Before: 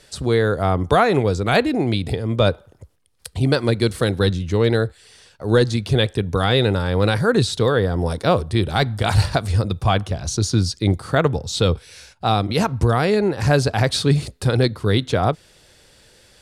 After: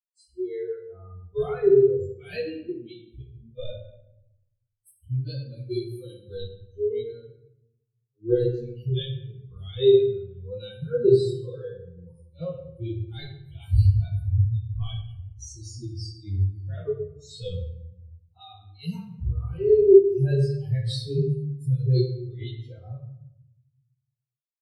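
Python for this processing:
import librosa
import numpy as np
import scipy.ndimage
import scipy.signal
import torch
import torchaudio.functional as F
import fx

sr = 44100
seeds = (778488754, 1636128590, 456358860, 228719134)

y = fx.bin_expand(x, sr, power=3.0)
y = fx.noise_reduce_blind(y, sr, reduce_db=22)
y = fx.curve_eq(y, sr, hz=(140.0, 200.0, 280.0, 400.0, 640.0, 980.0, 4000.0, 6800.0, 12000.0), db=(0, -18, -20, 10, -25, -27, -5, -10, -8))
y = fx.stretch_vocoder_free(y, sr, factor=1.5)
y = fx.high_shelf(y, sr, hz=3300.0, db=-7.0)
y = fx.room_shoebox(y, sr, seeds[0], volume_m3=200.0, walls='mixed', distance_m=0.88)
y = y * librosa.db_to_amplitude(4.0)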